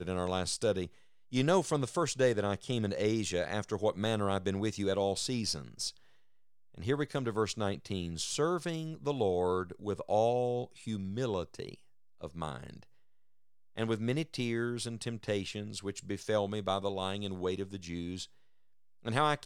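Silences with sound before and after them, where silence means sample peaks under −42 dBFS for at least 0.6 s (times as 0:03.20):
0:05.90–0:06.78
0:12.83–0:13.78
0:18.25–0:19.05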